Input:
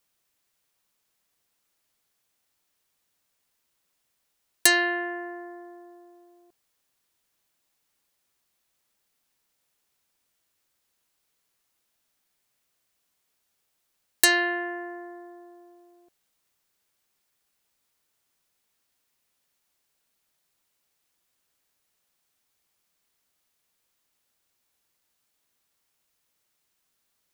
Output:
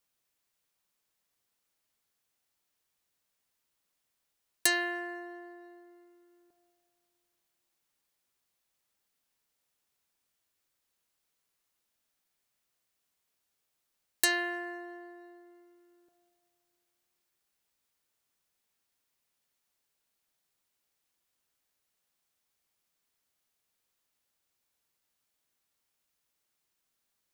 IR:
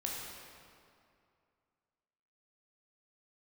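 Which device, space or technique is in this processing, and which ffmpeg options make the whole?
ducked reverb: -filter_complex "[0:a]asplit=3[a][b][c];[1:a]atrim=start_sample=2205[d];[b][d]afir=irnorm=-1:irlink=0[e];[c]apad=whole_len=1205408[f];[e][f]sidechaincompress=threshold=-35dB:ratio=8:attack=23:release=1160,volume=-8.5dB[g];[a][g]amix=inputs=2:normalize=0,volume=-8dB"

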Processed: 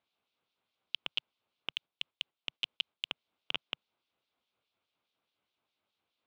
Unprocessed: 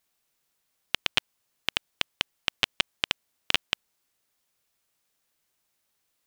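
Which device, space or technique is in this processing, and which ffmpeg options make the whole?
guitar amplifier with harmonic tremolo: -filter_complex "[0:a]acrossover=split=2500[a][b];[a]aeval=exprs='val(0)*(1-0.7/2+0.7/2*cos(2*PI*4.8*n/s))':c=same[c];[b]aeval=exprs='val(0)*(1-0.7/2-0.7/2*cos(2*PI*4.8*n/s))':c=same[d];[c][d]amix=inputs=2:normalize=0,asoftclip=type=tanh:threshold=-19.5dB,highpass=97,equalizer=f=150:t=q:w=4:g=-6,equalizer=f=1.8k:t=q:w=4:g=-10,equalizer=f=3.6k:t=q:w=4:g=3,lowpass=f=3.7k:w=0.5412,lowpass=f=3.7k:w=1.3066,asettb=1/sr,asplit=3[e][f][g];[e]atrim=end=1.724[h];[f]atrim=start=1.72:end=3.07,asetpts=PTS-STARTPTS,afade=t=in:d=0.004:c=qsin,afade=t=out:st=1.346:d=0.004:c=qsin,agate=range=-7dB:threshold=-52dB:ratio=16:detection=peak[i];[g]atrim=start=3.066[j];[h][i]acrossfade=d=0.004:c1=hsin:c2=qsin[k];[k][j]acrossfade=d=0.004:c1=qsin:c2=hsin,volume=2dB"

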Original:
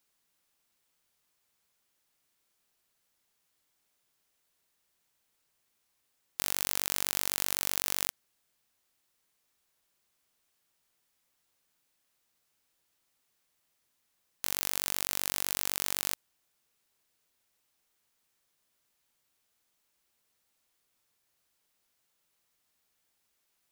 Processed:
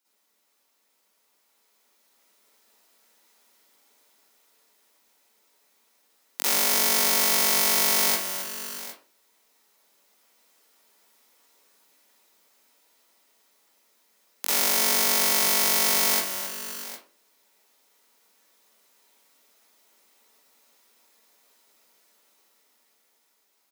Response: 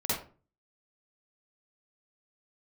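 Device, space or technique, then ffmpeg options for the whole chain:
far laptop microphone: -filter_complex "[0:a]highpass=f=230:w=0.5412,highpass=f=230:w=1.3066,aecho=1:1:267|512|632|758:0.299|0.112|0.112|0.188[a];[1:a]atrim=start_sample=2205[b];[a][b]afir=irnorm=-1:irlink=0,highpass=180,dynaudnorm=f=240:g=17:m=8dB"

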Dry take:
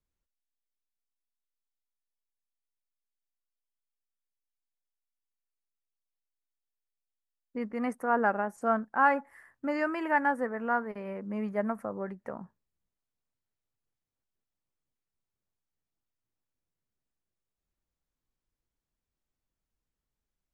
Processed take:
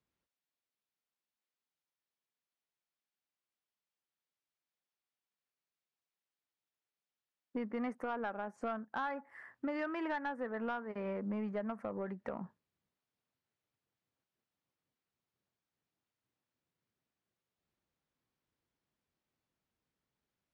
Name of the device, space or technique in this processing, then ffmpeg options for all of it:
AM radio: -af "highpass=110,lowpass=4.4k,acompressor=threshold=-38dB:ratio=6,asoftclip=type=tanh:threshold=-32.5dB,volume=4dB"

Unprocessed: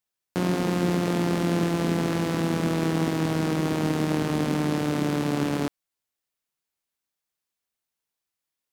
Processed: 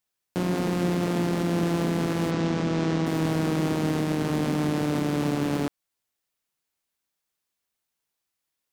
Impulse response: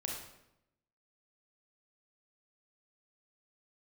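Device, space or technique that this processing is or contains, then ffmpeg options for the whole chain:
limiter into clipper: -filter_complex "[0:a]alimiter=limit=-17.5dB:level=0:latency=1:release=206,asoftclip=type=hard:threshold=-21.5dB,asplit=3[a][b][c];[a]afade=t=out:st=2.3:d=0.02[d];[b]lowpass=f=6.9k:w=0.5412,lowpass=f=6.9k:w=1.3066,afade=t=in:st=2.3:d=0.02,afade=t=out:st=3.05:d=0.02[e];[c]afade=t=in:st=3.05:d=0.02[f];[d][e][f]amix=inputs=3:normalize=0,volume=3dB"

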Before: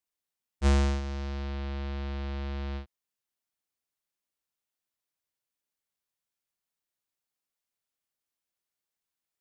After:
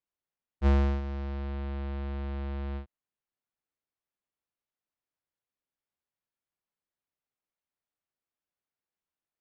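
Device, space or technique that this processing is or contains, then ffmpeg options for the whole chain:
phone in a pocket: -af "lowpass=3.9k,highshelf=f=2.4k:g=-9.5"

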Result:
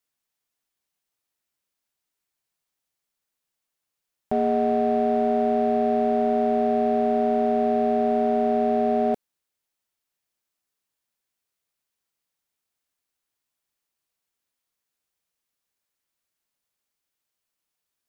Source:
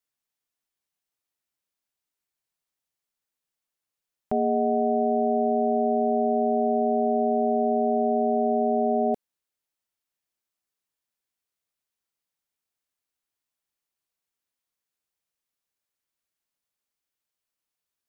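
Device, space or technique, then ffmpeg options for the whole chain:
parallel distortion: -filter_complex "[0:a]asplit=2[a][b];[b]asoftclip=type=hard:threshold=-30dB,volume=-6dB[c];[a][c]amix=inputs=2:normalize=0"

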